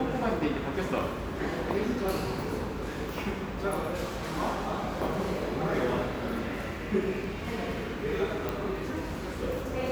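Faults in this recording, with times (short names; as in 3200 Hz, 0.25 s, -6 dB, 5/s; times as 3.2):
8.49 pop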